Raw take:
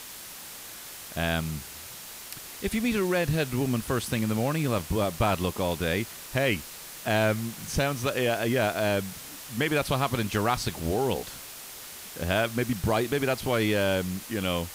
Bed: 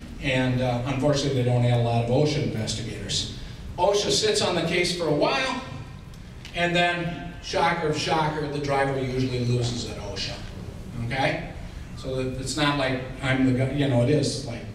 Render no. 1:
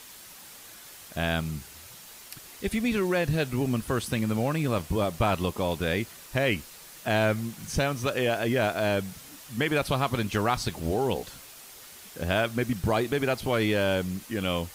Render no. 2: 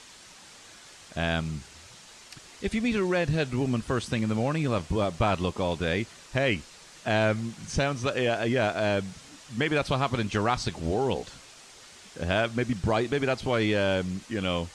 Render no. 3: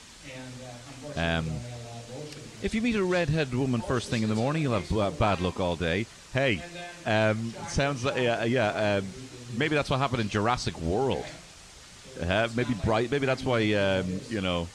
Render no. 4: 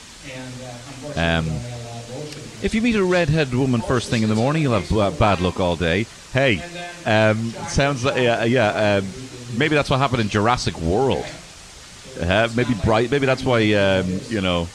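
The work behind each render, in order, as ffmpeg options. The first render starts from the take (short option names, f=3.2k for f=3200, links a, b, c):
-af "afftdn=nr=6:nf=-43"
-af "lowpass=f=8k:w=0.5412,lowpass=f=8k:w=1.3066"
-filter_complex "[1:a]volume=-19dB[a];[0:a][a]amix=inputs=2:normalize=0"
-af "volume=8dB"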